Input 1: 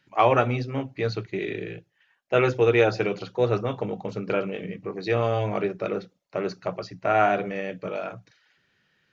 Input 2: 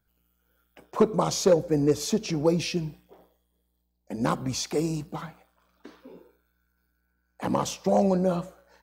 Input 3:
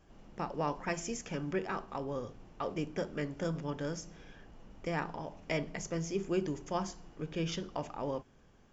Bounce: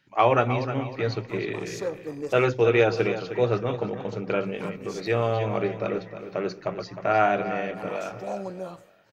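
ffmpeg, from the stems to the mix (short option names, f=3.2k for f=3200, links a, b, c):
-filter_complex "[0:a]volume=-0.5dB,asplit=3[a][b][c];[b]volume=-11dB[d];[1:a]equalizer=f=73:w=0.32:g=-11.5,adelay=350,volume=-7.5dB[e];[2:a]alimiter=level_in=8dB:limit=-24dB:level=0:latency=1,volume=-8dB,lowpass=f=1.9k:t=q:w=9.3,adelay=150,volume=-12dB[f];[c]apad=whole_len=404527[g];[e][g]sidechaincompress=threshold=-36dB:ratio=8:attack=29:release=297[h];[d]aecho=0:1:310|620|930|1240|1550:1|0.36|0.13|0.0467|0.0168[i];[a][h][f][i]amix=inputs=4:normalize=0"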